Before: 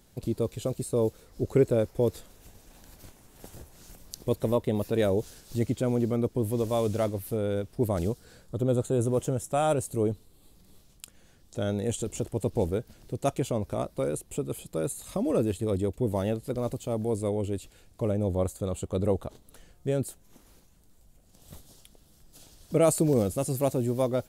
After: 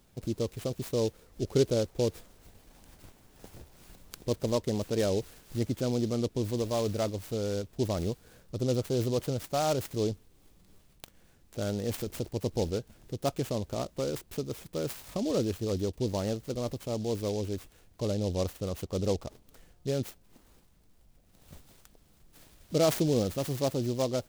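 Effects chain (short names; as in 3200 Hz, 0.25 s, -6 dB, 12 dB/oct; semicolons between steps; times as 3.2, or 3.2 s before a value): noise-modulated delay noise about 4500 Hz, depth 0.056 ms; gain -3 dB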